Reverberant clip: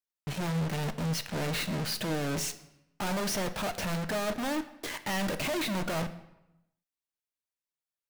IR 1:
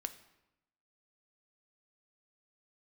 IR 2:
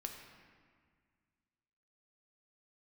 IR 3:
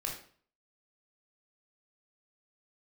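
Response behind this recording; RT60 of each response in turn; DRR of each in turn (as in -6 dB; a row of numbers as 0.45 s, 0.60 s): 1; 0.90 s, 1.8 s, 0.50 s; 8.5 dB, 2.5 dB, -1.0 dB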